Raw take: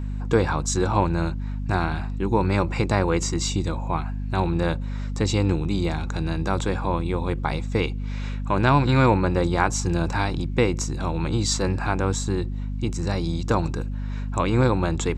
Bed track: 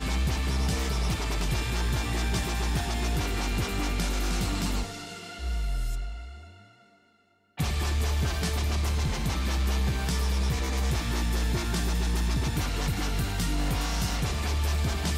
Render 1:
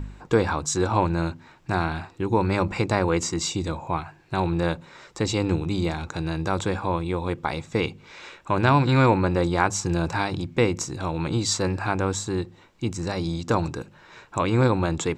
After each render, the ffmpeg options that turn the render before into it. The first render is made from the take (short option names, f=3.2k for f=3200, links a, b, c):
-af "bandreject=f=50:t=h:w=4,bandreject=f=100:t=h:w=4,bandreject=f=150:t=h:w=4,bandreject=f=200:t=h:w=4,bandreject=f=250:t=h:w=4"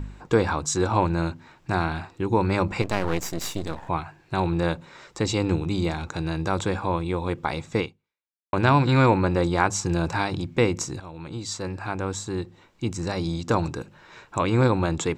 -filter_complex "[0:a]asettb=1/sr,asplit=3[a][b][c];[a]atrim=end=2.824[d];[b]atrim=start=2.82:end=3.89,asetpts=PTS-STARTPTS,afade=t=in:d=0.004:c=qsin,afade=t=out:st=1.066:d=0.004:c=qsin,aeval=exprs='max(val(0),0)':c=same[e];[c]atrim=start=3.886[f];[d][e]acrossfade=d=0.004:c1=hsin:c2=qsin[g];[g][f]acrossfade=d=0.004:c1=qsin:c2=hsin,asplit=3[h][i][j];[h]atrim=end=8.53,asetpts=PTS-STARTPTS,afade=t=out:st=7.8:d=0.73:c=exp[k];[i]atrim=start=8.53:end=11,asetpts=PTS-STARTPTS,afade=t=in:d=0.004:c=hsin,afade=t=out:st=2.466:d=0.004:c=hsin:silence=0.199526[l];[j]atrim=start=11,asetpts=PTS-STARTPTS,afade=t=in:d=1.97:silence=0.199526[m];[k][l][m]concat=n=3:v=0:a=1"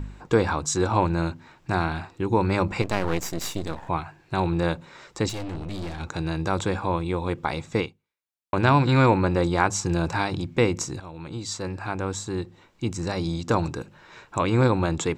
-filter_complex "[0:a]asettb=1/sr,asplit=3[a][b][c];[a]atrim=end=5.294[d];[b]atrim=start=5.29:end=6,asetpts=PTS-STARTPTS,afade=t=in:d=0.004:c=qsin,afade=t=out:st=0.706:d=0.004:c=qsin,aeval=exprs='(tanh(31.6*val(0)+0.5)-tanh(0.5))/31.6':c=same[e];[c]atrim=start=5.996[f];[d][e]acrossfade=d=0.004:c1=hsin:c2=qsin[g];[g][f]acrossfade=d=0.004:c1=qsin:c2=hsin"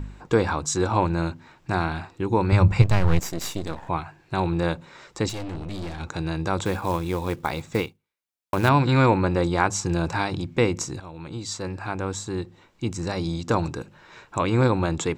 -filter_complex "[0:a]asettb=1/sr,asplit=3[a][b][c];[a]atrim=end=2.524[d];[b]atrim=start=2.52:end=3.2,asetpts=PTS-STARTPTS,afade=t=in:d=0.004:c=qsin,afade=t=out:st=0.676:d=0.004:c=qsin,lowshelf=f=180:t=q:w=1.5:g=11[e];[c]atrim=start=3.196[f];[d][e]acrossfade=d=0.004:c1=hsin:c2=qsin[g];[g][f]acrossfade=d=0.004:c1=qsin:c2=hsin,asettb=1/sr,asplit=3[h][i][j];[h]atrim=end=6.654[k];[i]atrim=start=6.65:end=8.69,asetpts=PTS-STARTPTS,afade=t=in:d=0.004:c=qsin,afade=t=out:st=2.036:d=0.004:c=qsin,acrusher=bits=5:mode=log:mix=0:aa=0.000001[l];[j]atrim=start=8.686[m];[k][l]acrossfade=d=0.004:c1=hsin:c2=qsin[n];[n][m]acrossfade=d=0.004:c1=qsin:c2=hsin"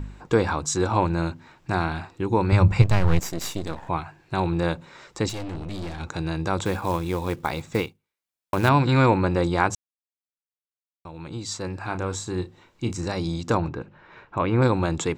-filter_complex "[0:a]asettb=1/sr,asplit=3[a][b][c];[a]atrim=end=11.864[d];[b]atrim=start=11.86:end=13.07,asetpts=PTS-STARTPTS,afade=t=in:d=0.004:c=qsin,afade=t=out:st=1.206:d=0.004:c=qsin,asplit=2[e][f];[f]adelay=33,volume=-9.5dB[g];[e][g]amix=inputs=2:normalize=0,atrim=end_sample=53361[h];[c]atrim=start=13.066[i];[d][h]acrossfade=d=0.004:c1=hsin:c2=qsin[j];[j][i]acrossfade=d=0.004:c1=qsin:c2=hsin,asettb=1/sr,asplit=3[k][l][m];[k]atrim=end=13.574[n];[l]atrim=start=13.57:end=14.62,asetpts=PTS-STARTPTS,afade=t=in:d=0.004:c=qsin,afade=t=out:st=1.046:d=0.004:c=qsin,lowpass=2.5k[o];[m]atrim=start=14.616[p];[n][o]acrossfade=d=0.004:c1=hsin:c2=qsin[q];[q][p]acrossfade=d=0.004:c1=qsin:c2=hsin,asplit=3[r][s][t];[r]atrim=end=9.75,asetpts=PTS-STARTPTS,afade=t=out:st=9.746:d=0.004:c=hsin[u];[s]atrim=start=9.75:end=11.05,asetpts=PTS-STARTPTS,volume=0[v];[t]atrim=start=11.05,asetpts=PTS-STARTPTS,afade=t=in:d=0.004:c=hsin[w];[u][v][w]concat=n=3:v=0:a=1"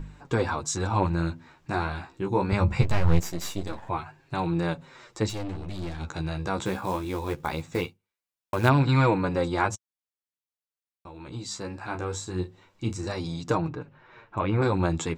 -af "flanger=delay=6.1:depth=9.8:regen=14:speed=0.22:shape=triangular"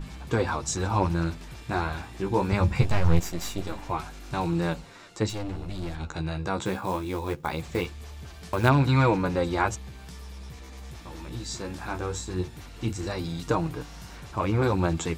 -filter_complex "[1:a]volume=-15dB[a];[0:a][a]amix=inputs=2:normalize=0"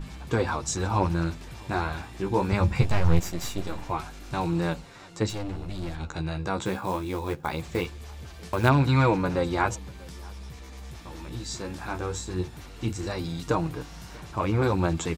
-filter_complex "[0:a]asplit=2[a][b];[b]adelay=641.4,volume=-24dB,highshelf=f=4k:g=-14.4[c];[a][c]amix=inputs=2:normalize=0"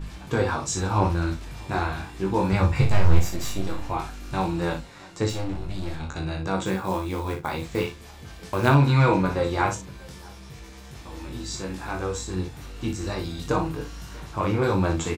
-filter_complex "[0:a]asplit=2[a][b];[b]adelay=37,volume=-11.5dB[c];[a][c]amix=inputs=2:normalize=0,aecho=1:1:21|58:0.562|0.266"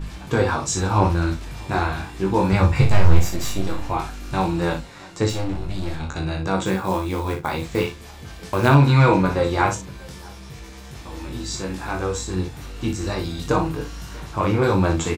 -af "volume=4dB,alimiter=limit=-2dB:level=0:latency=1"